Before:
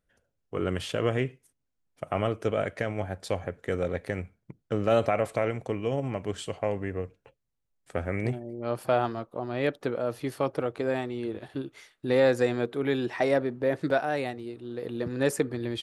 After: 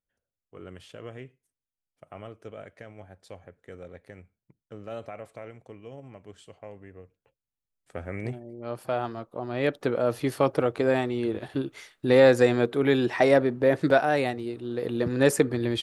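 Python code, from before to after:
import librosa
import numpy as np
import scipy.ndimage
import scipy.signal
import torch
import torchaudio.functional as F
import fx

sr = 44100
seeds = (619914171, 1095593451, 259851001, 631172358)

y = fx.gain(x, sr, db=fx.line((7.04, -14.5), (8.17, -4.0), (8.96, -4.0), (10.07, 5.0)))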